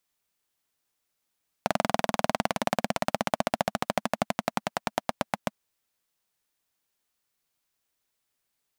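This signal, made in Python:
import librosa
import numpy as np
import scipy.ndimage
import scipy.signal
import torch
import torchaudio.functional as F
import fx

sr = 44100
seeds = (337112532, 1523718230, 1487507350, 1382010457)

y = fx.engine_single_rev(sr, seeds[0], length_s=3.95, rpm=2600, resonances_hz=(220.0, 650.0), end_rpm=800)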